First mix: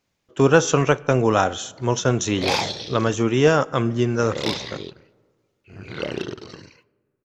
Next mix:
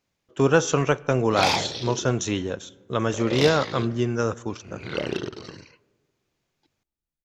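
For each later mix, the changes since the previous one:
speech −3.5 dB
background: entry −1.05 s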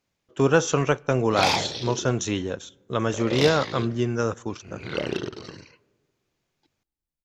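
speech: send −7.0 dB

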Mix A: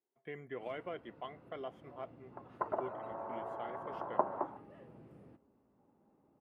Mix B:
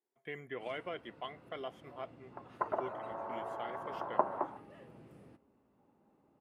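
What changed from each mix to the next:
master: add high-shelf EQ 2,100 Hz +10.5 dB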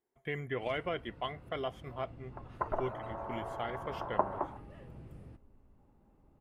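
speech +5.5 dB
master: remove high-pass filter 210 Hz 12 dB per octave

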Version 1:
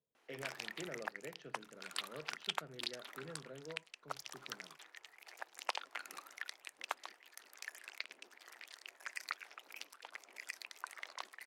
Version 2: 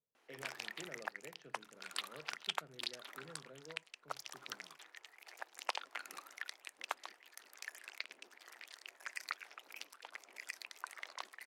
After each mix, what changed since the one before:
speech −5.0 dB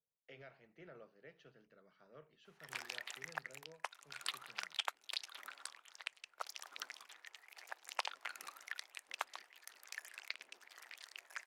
background: entry +2.30 s
master: add parametric band 280 Hz −7.5 dB 1.8 octaves

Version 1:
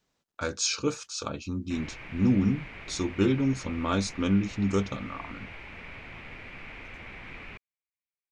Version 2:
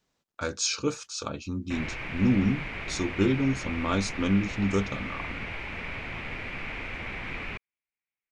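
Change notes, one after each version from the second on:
background +7.5 dB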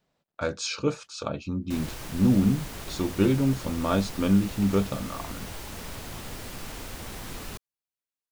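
speech: add graphic EQ with 15 bands 160 Hz +6 dB, 630 Hz +7 dB, 6,300 Hz −7 dB
background: remove low-pass with resonance 2,300 Hz, resonance Q 5.6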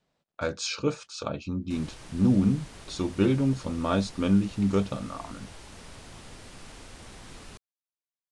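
background −6.5 dB
master: add Chebyshev low-pass filter 9,800 Hz, order 4

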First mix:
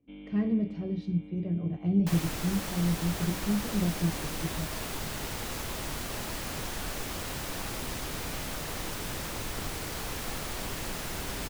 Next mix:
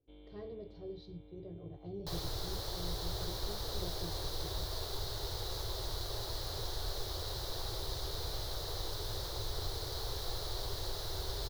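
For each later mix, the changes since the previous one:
speech −4.0 dB
master: add drawn EQ curve 110 Hz 0 dB, 230 Hz −27 dB, 380 Hz −1 dB, 560 Hz −4 dB, 920 Hz −6 dB, 1,700 Hz −12 dB, 2,600 Hz −19 dB, 4,000 Hz +5 dB, 7,800 Hz −13 dB, 12,000 Hz −8 dB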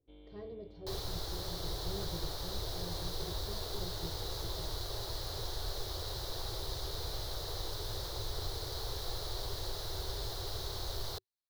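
second sound: entry −1.20 s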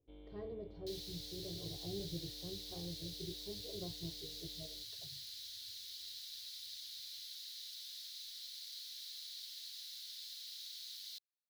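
second sound: add inverse Chebyshev high-pass filter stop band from 980 Hz, stop band 50 dB
master: add high-shelf EQ 3,600 Hz −7 dB

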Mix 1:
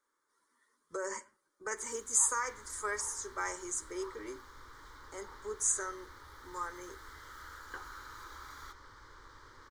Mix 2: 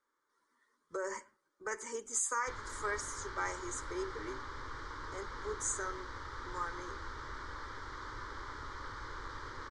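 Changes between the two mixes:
first sound: muted
second sound +11.0 dB
master: add high-frequency loss of the air 69 metres

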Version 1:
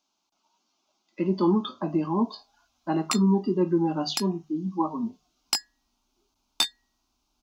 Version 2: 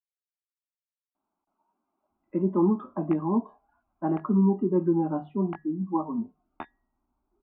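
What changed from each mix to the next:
speech: entry +1.15 s
master: add Gaussian smoothing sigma 5.8 samples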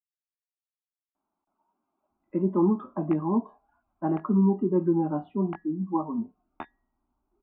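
speech: remove mains-hum notches 50/100/150 Hz

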